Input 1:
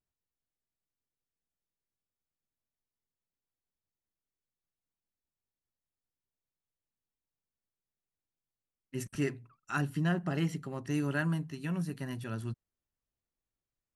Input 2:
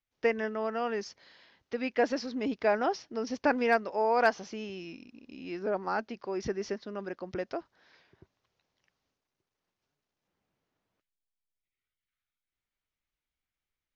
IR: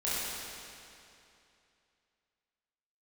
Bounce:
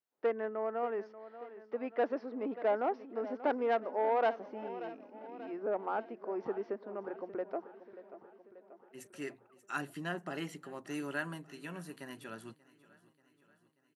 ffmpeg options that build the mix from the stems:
-filter_complex "[0:a]equalizer=f=5500:t=o:w=0.29:g=-4.5,volume=0.75,asplit=2[s0][s1];[s1]volume=0.0841[s2];[1:a]lowpass=1100,bandreject=f=60:t=h:w=6,bandreject=f=120:t=h:w=6,bandreject=f=180:t=h:w=6,asoftclip=type=tanh:threshold=0.0841,volume=0.944,asplit=3[s3][s4][s5];[s4]volume=0.188[s6];[s5]apad=whole_len=615236[s7];[s0][s7]sidechaincompress=threshold=0.00251:ratio=8:attack=6.2:release=1420[s8];[s2][s6]amix=inputs=2:normalize=0,aecho=0:1:585|1170|1755|2340|2925|3510|4095|4680|5265:1|0.58|0.336|0.195|0.113|0.0656|0.0381|0.0221|0.0128[s9];[s8][s3][s9]amix=inputs=3:normalize=0,highpass=330"

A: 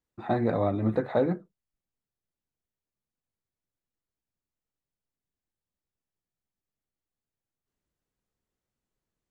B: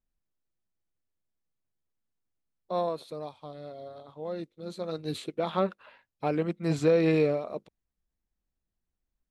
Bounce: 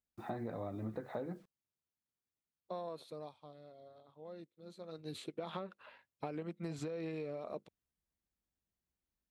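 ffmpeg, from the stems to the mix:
-filter_complex "[0:a]acrusher=bits=9:mix=0:aa=0.000001,volume=0.422[s0];[1:a]highpass=60,acompressor=threshold=0.0398:ratio=6,volume=1.58,afade=t=out:st=2.92:d=0.74:silence=0.421697,afade=t=in:st=4.88:d=0.67:silence=0.298538[s1];[s0][s1]amix=inputs=2:normalize=0,acompressor=threshold=0.0126:ratio=6"

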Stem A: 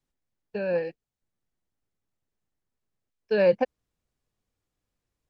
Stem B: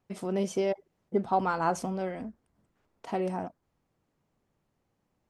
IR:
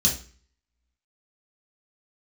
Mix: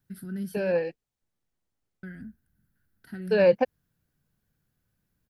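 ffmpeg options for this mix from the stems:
-filter_complex "[0:a]volume=1.12[s0];[1:a]firequalizer=gain_entry='entry(160,0);entry(530,-28);entry(1100,-29);entry(1500,4);entry(2300,-19);entry(4500,-6);entry(6700,-24);entry(11000,9)':delay=0.05:min_phase=1,volume=1.26,asplit=3[s1][s2][s3];[s1]atrim=end=0.82,asetpts=PTS-STARTPTS,afade=t=out:st=0.816:d=0.004:c=hsin[s4];[s2]atrim=start=0.82:end=2.03,asetpts=PTS-STARTPTS,volume=0[s5];[s3]atrim=start=2.03,asetpts=PTS-STARTPTS,afade=t=in:d=0.004:c=hsin[s6];[s4][s5][s6]concat=n=3:v=0:a=1[s7];[s0][s7]amix=inputs=2:normalize=0"

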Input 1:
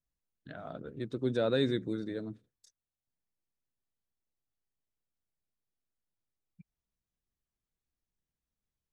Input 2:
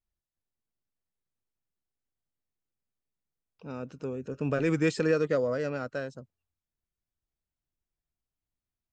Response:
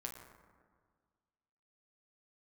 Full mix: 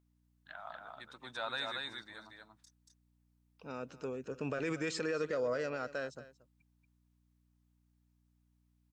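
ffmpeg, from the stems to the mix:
-filter_complex "[0:a]lowshelf=f=620:t=q:w=3:g=-12.5,volume=0.944,asplit=2[s0][s1];[s1]volume=0.668[s2];[1:a]aeval=exprs='val(0)+0.000794*(sin(2*PI*60*n/s)+sin(2*PI*2*60*n/s)/2+sin(2*PI*3*60*n/s)/3+sin(2*PI*4*60*n/s)/4+sin(2*PI*5*60*n/s)/5)':c=same,volume=1.06,asplit=2[s3][s4];[s4]volume=0.126[s5];[s2][s5]amix=inputs=2:normalize=0,aecho=0:1:232:1[s6];[s0][s3][s6]amix=inputs=3:normalize=0,lowshelf=f=350:g=-12,alimiter=level_in=1.33:limit=0.0631:level=0:latency=1:release=75,volume=0.75"

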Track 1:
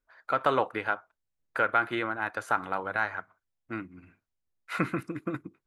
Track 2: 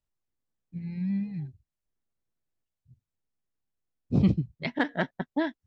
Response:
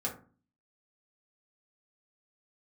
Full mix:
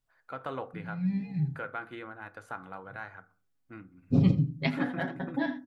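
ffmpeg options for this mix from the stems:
-filter_complex "[0:a]lowshelf=f=260:g=8.5,volume=0.178,asplit=3[s0][s1][s2];[s1]volume=0.266[s3];[1:a]aecho=1:1:7.3:0.71,alimiter=limit=0.178:level=0:latency=1:release=260,volume=0.841,asplit=3[s4][s5][s6];[s5]volume=0.422[s7];[s6]volume=0.188[s8];[s2]apad=whole_len=250061[s9];[s4][s9]sidechaincompress=threshold=0.00141:ratio=8:attack=16:release=147[s10];[2:a]atrim=start_sample=2205[s11];[s3][s7]amix=inputs=2:normalize=0[s12];[s12][s11]afir=irnorm=-1:irlink=0[s13];[s8]aecho=0:1:83:1[s14];[s0][s10][s13][s14]amix=inputs=4:normalize=0"

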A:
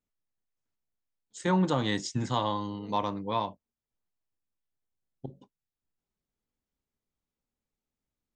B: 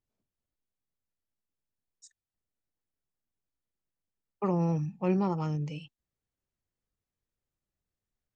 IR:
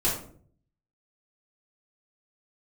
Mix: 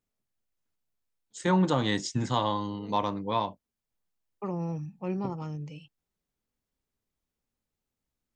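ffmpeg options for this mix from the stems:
-filter_complex "[0:a]volume=1.19[s0];[1:a]acontrast=55,volume=0.282[s1];[s0][s1]amix=inputs=2:normalize=0"

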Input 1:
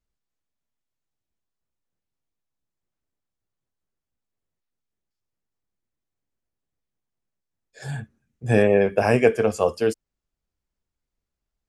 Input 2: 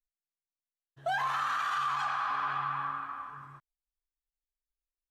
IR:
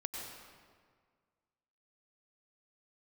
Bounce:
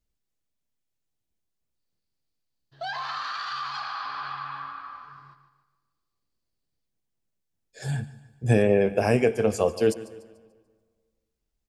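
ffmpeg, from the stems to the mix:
-filter_complex "[0:a]equalizer=f=1200:w=0.75:g=-5.5,volume=1.26,asplit=3[s0][s1][s2];[s1]volume=0.1[s3];[s2]volume=0.133[s4];[1:a]lowpass=f=4600:t=q:w=7.9,adelay=1750,volume=0.668,asplit=3[s5][s6][s7];[s6]volume=0.119[s8];[s7]volume=0.299[s9];[2:a]atrim=start_sample=2205[s10];[s3][s8]amix=inputs=2:normalize=0[s11];[s11][s10]afir=irnorm=-1:irlink=0[s12];[s4][s9]amix=inputs=2:normalize=0,aecho=0:1:146|292|438|584|730|876:1|0.41|0.168|0.0689|0.0283|0.0116[s13];[s0][s5][s12][s13]amix=inputs=4:normalize=0,alimiter=limit=0.335:level=0:latency=1:release=423"

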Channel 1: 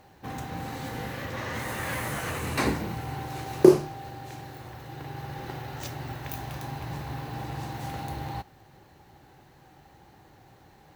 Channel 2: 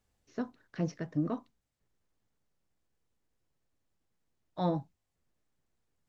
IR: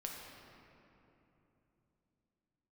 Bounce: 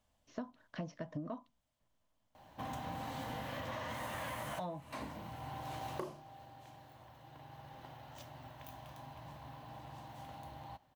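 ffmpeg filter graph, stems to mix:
-filter_complex "[0:a]adelay=2350,volume=0.473,afade=t=out:st=5.86:d=0.37:silence=0.281838[s0];[1:a]volume=0.891,asplit=2[s1][s2];[s2]apad=whole_len=586631[s3];[s0][s3]sidechaincompress=threshold=0.01:ratio=12:attack=6.4:release=1230[s4];[s4][s1]amix=inputs=2:normalize=0,asoftclip=type=hard:threshold=0.0944,equalizer=f=250:t=o:w=0.33:g=4,equalizer=f=400:t=o:w=0.33:g=-9,equalizer=f=630:t=o:w=0.33:g=11,equalizer=f=1000:t=o:w=0.33:g=9,equalizer=f=3150:t=o:w=0.33:g=7,acompressor=threshold=0.0126:ratio=16"

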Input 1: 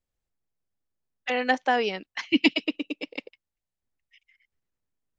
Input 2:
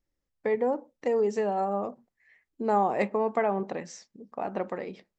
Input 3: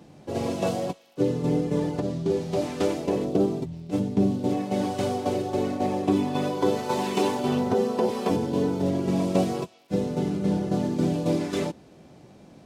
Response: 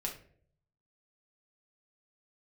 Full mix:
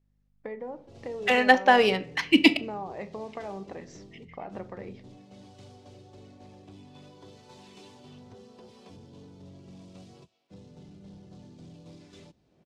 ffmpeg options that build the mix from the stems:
-filter_complex "[0:a]dynaudnorm=f=340:g=3:m=2.82,volume=0.596,asplit=3[s0][s1][s2];[s0]atrim=end=2.57,asetpts=PTS-STARTPTS,afade=t=out:st=2.566:d=0.004:c=hsin[s3];[s1]atrim=start=2.57:end=3.29,asetpts=PTS-STARTPTS,volume=0[s4];[s2]atrim=start=3.29,asetpts=PTS-STARTPTS,afade=t=in:d=0.004:c=hsin[s5];[s3][s4][s5]concat=n=3:v=0:a=1,asplit=2[s6][s7];[s7]volume=0.473[s8];[1:a]acompressor=threshold=0.02:ratio=3,aeval=exprs='val(0)+0.000501*(sin(2*PI*50*n/s)+sin(2*PI*2*50*n/s)/2+sin(2*PI*3*50*n/s)/3+sin(2*PI*4*50*n/s)/4+sin(2*PI*5*50*n/s)/5)':c=same,volume=0.531,asplit=2[s9][s10];[s10]volume=0.447[s11];[2:a]acrossover=split=120|3000[s12][s13][s14];[s13]acompressor=threshold=0.00316:ratio=2[s15];[s12][s15][s14]amix=inputs=3:normalize=0,asoftclip=type=tanh:threshold=0.0282,adelay=600,volume=0.282[s16];[3:a]atrim=start_sample=2205[s17];[s8][s11]amix=inputs=2:normalize=0[s18];[s18][s17]afir=irnorm=-1:irlink=0[s19];[s6][s9][s16][s19]amix=inputs=4:normalize=0,adynamicsmooth=sensitivity=4:basefreq=5700"

